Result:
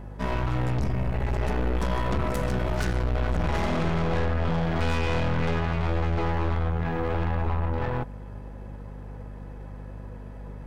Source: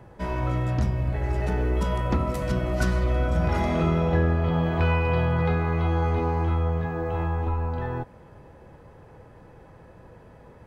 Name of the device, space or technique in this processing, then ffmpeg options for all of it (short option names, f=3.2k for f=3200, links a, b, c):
valve amplifier with mains hum: -af "aeval=exprs='(tanh(35.5*val(0)+0.8)-tanh(0.8))/35.5':c=same,aeval=exprs='val(0)+0.00562*(sin(2*PI*50*n/s)+sin(2*PI*2*50*n/s)/2+sin(2*PI*3*50*n/s)/3+sin(2*PI*4*50*n/s)/4+sin(2*PI*5*50*n/s)/5)':c=same,volume=7dB"